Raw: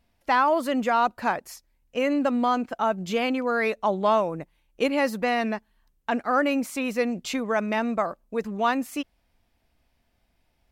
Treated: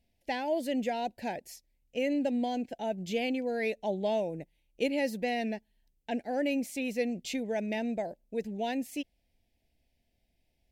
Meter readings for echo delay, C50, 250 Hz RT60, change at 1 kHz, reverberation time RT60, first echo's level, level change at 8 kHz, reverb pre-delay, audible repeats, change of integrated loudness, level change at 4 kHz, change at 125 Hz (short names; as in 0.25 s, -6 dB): none, none, none, -13.0 dB, none, none, -5.5 dB, none, none, -7.5 dB, -5.5 dB, -5.5 dB